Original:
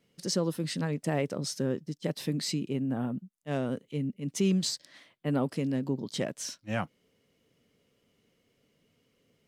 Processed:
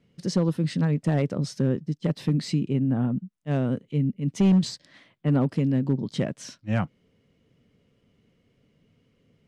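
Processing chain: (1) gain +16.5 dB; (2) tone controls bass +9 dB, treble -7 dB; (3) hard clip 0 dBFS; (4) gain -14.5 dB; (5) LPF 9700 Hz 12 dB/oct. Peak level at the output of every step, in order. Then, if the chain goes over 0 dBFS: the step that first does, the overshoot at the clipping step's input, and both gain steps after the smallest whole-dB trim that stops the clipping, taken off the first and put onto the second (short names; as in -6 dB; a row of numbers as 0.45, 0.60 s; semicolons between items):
+1.0, +4.0, 0.0, -14.5, -14.5 dBFS; step 1, 4.0 dB; step 1 +12.5 dB, step 4 -10.5 dB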